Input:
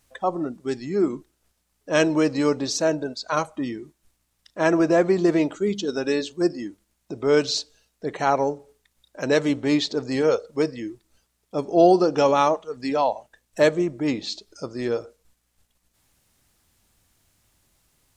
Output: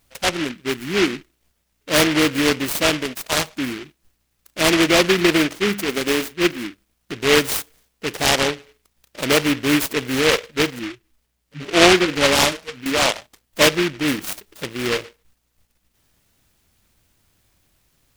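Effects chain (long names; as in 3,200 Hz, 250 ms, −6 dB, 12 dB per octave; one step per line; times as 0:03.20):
0:10.79–0:12.86: harmonic-percussive split with one part muted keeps harmonic
short delay modulated by noise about 2,100 Hz, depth 0.25 ms
level +3 dB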